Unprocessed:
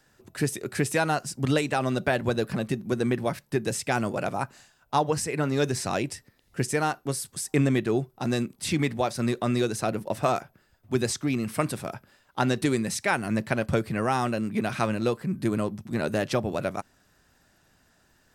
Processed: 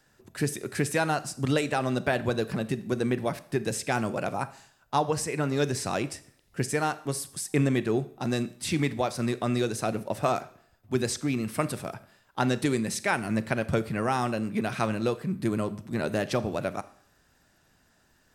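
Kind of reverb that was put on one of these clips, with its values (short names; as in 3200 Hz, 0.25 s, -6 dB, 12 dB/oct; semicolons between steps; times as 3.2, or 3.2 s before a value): Schroeder reverb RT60 0.6 s, combs from 28 ms, DRR 15 dB; gain -1.5 dB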